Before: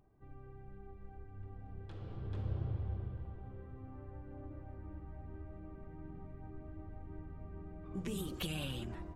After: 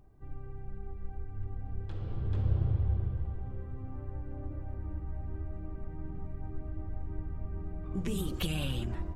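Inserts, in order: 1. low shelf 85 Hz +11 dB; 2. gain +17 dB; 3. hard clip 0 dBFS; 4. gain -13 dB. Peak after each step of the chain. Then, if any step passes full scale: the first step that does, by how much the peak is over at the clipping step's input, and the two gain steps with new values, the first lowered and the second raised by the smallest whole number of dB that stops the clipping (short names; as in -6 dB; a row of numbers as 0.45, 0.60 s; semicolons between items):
-21.5, -4.5, -4.5, -17.5 dBFS; no overload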